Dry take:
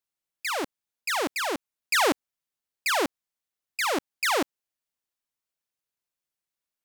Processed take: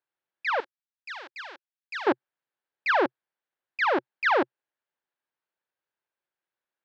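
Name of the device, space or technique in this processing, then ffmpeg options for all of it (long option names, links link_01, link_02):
overdrive pedal into a guitar cabinet: -filter_complex "[0:a]asplit=2[link_01][link_02];[link_02]highpass=frequency=720:poles=1,volume=7dB,asoftclip=type=tanh:threshold=-16dB[link_03];[link_01][link_03]amix=inputs=2:normalize=0,lowpass=frequency=1700:poles=1,volume=-6dB,highpass=88,equalizer=frequency=130:width_type=q:width=4:gain=5,equalizer=frequency=360:width_type=q:width=4:gain=7,equalizer=frequency=540:width_type=q:width=4:gain=5,equalizer=frequency=870:width_type=q:width=4:gain=5,equalizer=frequency=1600:width_type=q:width=4:gain=7,lowpass=frequency=4400:width=0.5412,lowpass=frequency=4400:width=1.3066,asettb=1/sr,asplit=3[link_04][link_05][link_06];[link_04]atrim=end=0.604[link_07];[link_05]atrim=start=0.6:end=2.07,asetpts=PTS-STARTPTS,afade=type=in:duration=0.004:curve=qsin,afade=type=out:start_time=1.466:duration=0.004:curve=qsin,aderivative[link_08];[link_06]atrim=start=2.066[link_09];[link_07][link_08]acrossfade=duration=0.004:curve1=hsin:curve2=qsin[link_10];[link_10][link_09]acrossfade=duration=0.004:curve1=qsin:curve2=hsin"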